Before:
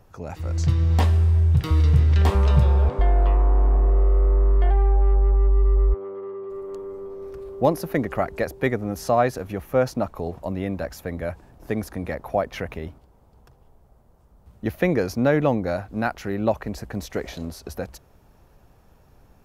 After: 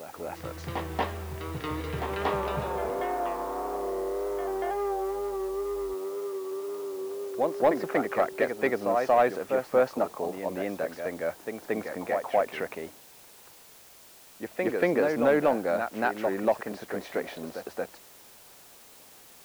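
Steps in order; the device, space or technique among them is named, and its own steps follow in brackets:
backwards echo 232 ms −6 dB
tape answering machine (band-pass filter 340–2,800 Hz; soft clipping −12.5 dBFS, distortion −19 dB; tape wow and flutter; white noise bed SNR 23 dB)

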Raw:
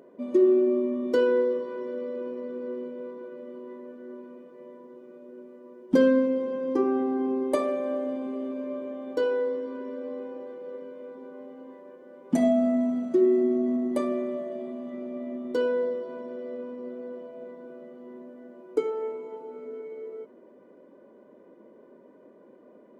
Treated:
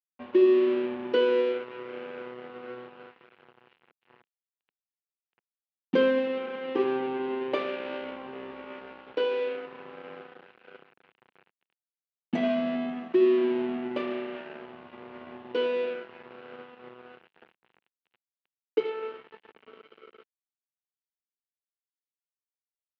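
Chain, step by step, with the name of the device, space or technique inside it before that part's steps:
blown loudspeaker (dead-zone distortion −36.5 dBFS; loudspeaker in its box 200–3,700 Hz, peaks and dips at 270 Hz −9 dB, 610 Hz −8 dB, 1,200 Hz −4 dB, 2,800 Hz +7 dB)
level +3 dB

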